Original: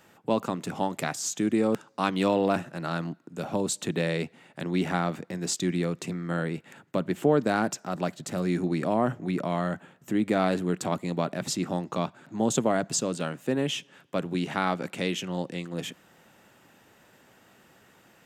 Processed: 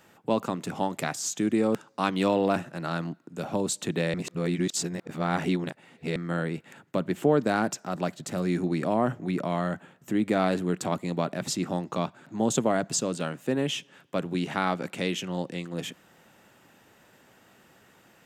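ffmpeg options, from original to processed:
-filter_complex "[0:a]asplit=3[a][b][c];[a]atrim=end=4.142[d];[b]atrim=start=4.138:end=6.162,asetpts=PTS-STARTPTS,areverse[e];[c]atrim=start=6.158[f];[d][e]acrossfade=d=0.004:c1=hsin:c2=hsin[g];[g][f]acrossfade=d=0.004:c1=hsin:c2=hsin"

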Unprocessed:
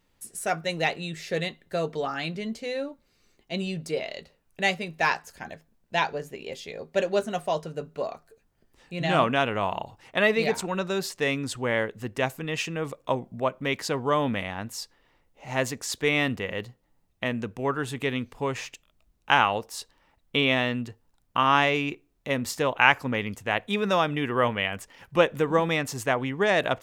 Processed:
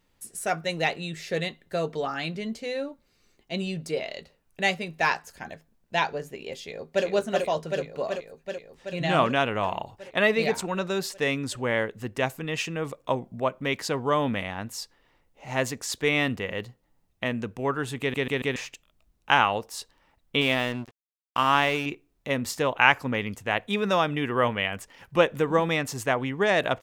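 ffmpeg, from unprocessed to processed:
-filter_complex "[0:a]asplit=2[a][b];[b]afade=t=in:st=6.59:d=0.01,afade=t=out:st=7.06:d=0.01,aecho=0:1:380|760|1140|1520|1900|2280|2660|3040|3420|3800|4180|4560:0.794328|0.595746|0.44681|0.335107|0.25133|0.188498|0.141373|0.10603|0.0795225|0.0596419|0.0447314|0.0335486[c];[a][c]amix=inputs=2:normalize=0,asettb=1/sr,asplit=3[d][e][f];[d]atrim=end=20.414[g];[e]atrim=start=20.41:end=21.86,asetpts=PTS-STARTPTS,afade=t=in:d=0.004:c=qsin,afade=t=out:st=1.446:d=0.004:c=qsin,aeval=exprs='sgn(val(0))*max(abs(val(0))-0.0141,0)':c=same[h];[f]atrim=start=21.856[i];[g][h]acrossfade=d=0.004:c1=hsin:c2=qsin[j];[j][i]acrossfade=d=0.004:c1=qsin:c2=hsin,asplit=5[k][l][m][n][o];[k]atrim=end=18.142[p];[l]atrim=start=17.998:end=18.142[q];[m]atrim=start=17.998:end=18.142[r];[n]atrim=start=17.998:end=18.142[s];[o]atrim=start=18.558[t];[p][q]acrossfade=d=0.004:c1=hsin:c2=hsin[u];[u][r]acrossfade=d=0.004:c1=hsin:c2=hsin[v];[v][s]acrossfade=d=0.004:c1=hsin:c2=hsin[w];[w][t]acrossfade=d=0.004:c1=hsin:c2=hsin"

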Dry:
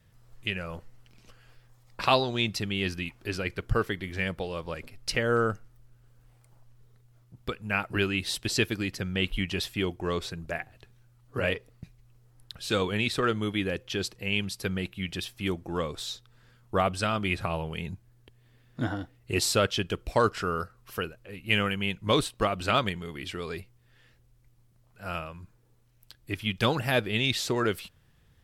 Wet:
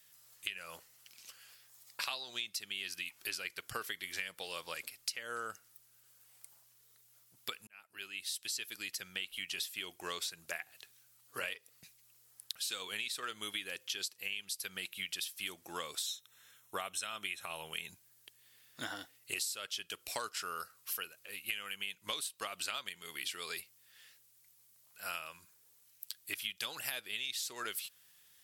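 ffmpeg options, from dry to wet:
-filter_complex "[0:a]asettb=1/sr,asplit=3[a][b][c];[a]atrim=end=16.064[d];[b]atrim=start=16.06:end=17.9,asetpts=PTS-STARTPTS,afade=t=in:d=0.004:c=qsin,afade=t=out:st=1.836:d=0.004:c=qsin,asuperstop=centerf=4700:order=8:qfactor=5.5[e];[c]atrim=start=17.896[f];[d][e]acrossfade=d=0.004:c1=hsin:c2=qsin[g];[g][f]acrossfade=d=0.004:c1=qsin:c2=hsin,asplit=2[h][i];[h]atrim=end=7.67,asetpts=PTS-STARTPTS,afade=t=out:st=7.666:d=0.004:c=hsin[j];[i]atrim=start=7.67,asetpts=PTS-STARTPTS,afade=t=in:d=2.51[k];[j][k]concat=n=2:v=0:a=1,aderivative,acompressor=threshold=-47dB:ratio=12,volume=11.5dB"

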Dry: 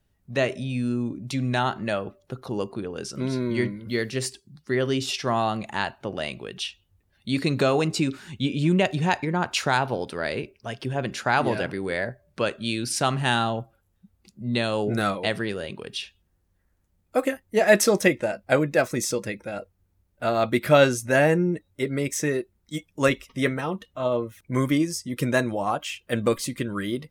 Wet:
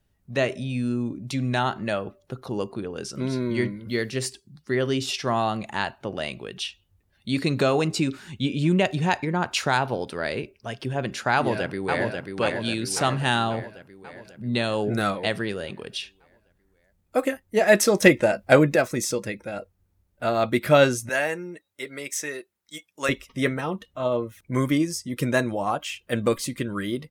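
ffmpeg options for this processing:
-filter_complex "[0:a]asplit=2[a][b];[b]afade=t=in:st=11.34:d=0.01,afade=t=out:st=12.06:d=0.01,aecho=0:1:540|1080|1620|2160|2700|3240|3780|4320|4860:0.595662|0.357397|0.214438|0.128663|0.0771978|0.0463187|0.0277912|0.0166747|0.0100048[c];[a][c]amix=inputs=2:normalize=0,asettb=1/sr,asplit=3[d][e][f];[d]atrim=end=18.024[g];[e]atrim=start=18.02:end=18.76,asetpts=PTS-STARTPTS,afade=t=in:d=0.004:c=qsin,afade=t=out:st=0.736:d=0.004:c=qsin,acontrast=45[h];[f]atrim=start=18.756[i];[g][h]acrossfade=d=0.004:c1=hsin:c2=qsin[j];[j][i]acrossfade=d=0.004:c1=qsin:c2=hsin,asettb=1/sr,asplit=3[k][l][m];[k]atrim=end=21.094[n];[l]atrim=start=21.09:end=23.09,asetpts=PTS-STARTPTS,afade=t=in:d=0.004:c=qsin,afade=t=out:st=1.996:d=0.004:c=qsin,highpass=f=1.2k:p=1[o];[m]atrim=start=23.086[p];[n][o]acrossfade=d=0.004:c1=hsin:c2=qsin[q];[q][p]acrossfade=d=0.004:c1=qsin:c2=hsin"

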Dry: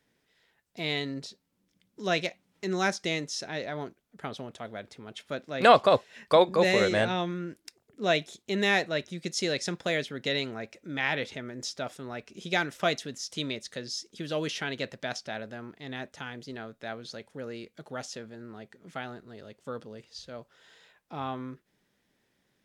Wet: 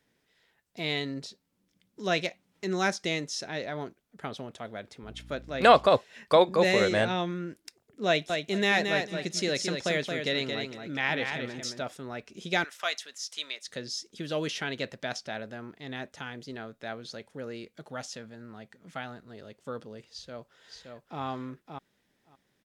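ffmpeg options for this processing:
-filter_complex "[0:a]asettb=1/sr,asplit=3[a][b][c];[a]atrim=end=5.034[d];[b]atrim=start=5.03:end=5.87,asetpts=PTS-STARTPTS,afade=t=in:d=0.004:c=qsin,afade=t=out:st=0.836:d=0.004:c=qsin,aeval=exprs='val(0)+0.00447*(sin(2*PI*60*n/s)+sin(2*PI*2*60*n/s)/2+sin(2*PI*3*60*n/s)/3+sin(2*PI*4*60*n/s)/4+sin(2*PI*5*60*n/s)/5)':c=same[e];[c]atrim=start=5.866[f];[d][e]acrossfade=d=0.004:c1=hsin:c2=qsin[g];[g][f]acrossfade=d=0.004:c1=qsin:c2=hsin,asettb=1/sr,asplit=3[h][i][j];[h]atrim=end=8.074[k];[i]atrim=start=8.07:end=11.82,asetpts=PTS-STARTPTS,afade=t=in:d=0.004:c=qsin,afade=t=out:st=3.746:d=0.004:c=qsin,aecho=1:1:224|448|672:0.531|0.0903|0.0153,atrim=end_sample=165375[l];[j]atrim=start=11.816[m];[k][l]acrossfade=d=0.004:c1=hsin:c2=qsin[n];[n][m]acrossfade=d=0.004:c1=qsin:c2=hsin,asettb=1/sr,asplit=3[o][p][q];[o]atrim=end=12.644[r];[p]atrim=start=12.64:end=13.68,asetpts=PTS-STARTPTS,afade=t=in:d=0.004:c=qsin,afade=t=out:st=1.036:d=0.004:c=qsin,highpass=1k[s];[q]atrim=start=13.676[t];[r][s]acrossfade=d=0.004:c1=hsin:c2=qsin[u];[u][t]acrossfade=d=0.004:c1=qsin:c2=hsin,asettb=1/sr,asplit=3[v][w][x];[v]atrim=end=17.904[y];[w]atrim=start=17.9:end=19.3,asetpts=PTS-STARTPTS,afade=t=in:d=0.004:c=qsin,afade=t=out:st=1.396:d=0.004:c=qsin,equalizer=f=380:t=o:w=0.47:g=-7.5[z];[x]atrim=start=19.296[aa];[y][z]acrossfade=d=0.004:c1=hsin:c2=qsin[ab];[ab][aa]acrossfade=d=0.004:c1=qsin:c2=hsin,asplit=2[ac][ad];[ad]afade=t=in:st=20.07:d=0.01,afade=t=out:st=21.21:d=0.01,aecho=0:1:570|1140:0.595662|0.0595662[ae];[ac][ae]amix=inputs=2:normalize=0"

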